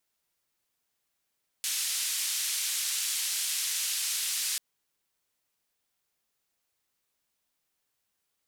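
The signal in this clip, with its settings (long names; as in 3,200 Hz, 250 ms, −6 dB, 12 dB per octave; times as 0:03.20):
band-limited noise 2,700–11,000 Hz, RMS −31 dBFS 2.94 s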